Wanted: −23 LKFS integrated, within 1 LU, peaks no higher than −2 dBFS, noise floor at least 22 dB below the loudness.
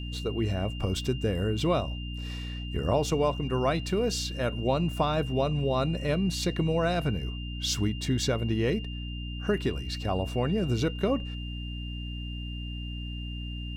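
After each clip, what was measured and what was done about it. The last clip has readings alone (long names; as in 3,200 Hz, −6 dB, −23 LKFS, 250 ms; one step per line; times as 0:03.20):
mains hum 60 Hz; hum harmonics up to 300 Hz; level of the hum −34 dBFS; interfering tone 2,800 Hz; level of the tone −42 dBFS; integrated loudness −29.5 LKFS; sample peak −13.5 dBFS; target loudness −23.0 LKFS
→ mains-hum notches 60/120/180/240/300 Hz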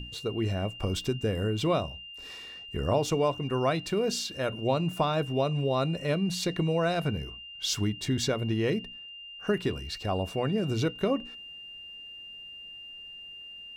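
mains hum none found; interfering tone 2,800 Hz; level of the tone −42 dBFS
→ notch filter 2,800 Hz, Q 30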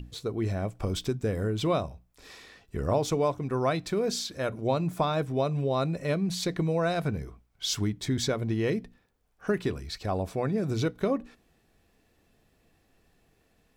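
interfering tone none found; integrated loudness −29.5 LKFS; sample peak −14.0 dBFS; target loudness −23.0 LKFS
→ level +6.5 dB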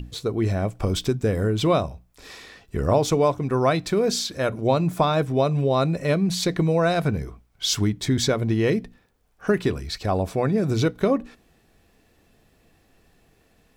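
integrated loudness −23.0 LKFS; sample peak −7.5 dBFS; background noise floor −62 dBFS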